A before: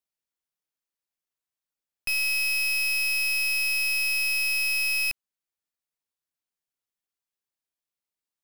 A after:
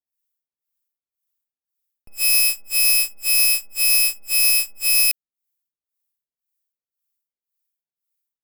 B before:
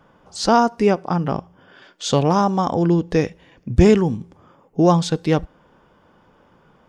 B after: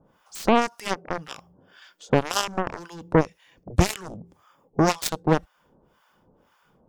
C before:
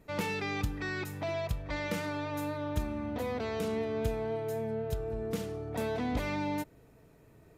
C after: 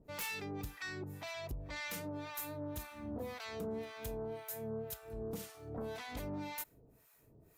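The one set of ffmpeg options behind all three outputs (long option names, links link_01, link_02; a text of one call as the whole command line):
ffmpeg -i in.wav -filter_complex "[0:a]acrossover=split=810[link_01][link_02];[link_01]aeval=exprs='val(0)*(1-1/2+1/2*cos(2*PI*1.9*n/s))':channel_layout=same[link_03];[link_02]aeval=exprs='val(0)*(1-1/2-1/2*cos(2*PI*1.9*n/s))':channel_layout=same[link_04];[link_03][link_04]amix=inputs=2:normalize=0,asplit=2[link_05][link_06];[link_06]acompressor=threshold=-32dB:ratio=6,volume=-1.5dB[link_07];[link_05][link_07]amix=inputs=2:normalize=0,aemphasis=mode=production:type=50fm,aeval=exprs='0.596*(cos(1*acos(clip(val(0)/0.596,-1,1)))-cos(1*PI/2))+0.0422*(cos(2*acos(clip(val(0)/0.596,-1,1)))-cos(2*PI/2))+0.119*(cos(7*acos(clip(val(0)/0.596,-1,1)))-cos(7*PI/2))':channel_layout=same" out.wav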